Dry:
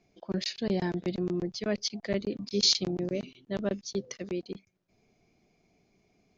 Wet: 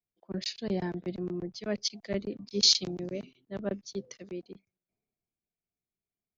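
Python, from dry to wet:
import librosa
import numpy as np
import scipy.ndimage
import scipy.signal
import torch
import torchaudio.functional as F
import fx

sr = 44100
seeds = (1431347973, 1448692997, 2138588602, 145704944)

y = fx.band_widen(x, sr, depth_pct=70)
y = F.gain(torch.from_numpy(y), -4.0).numpy()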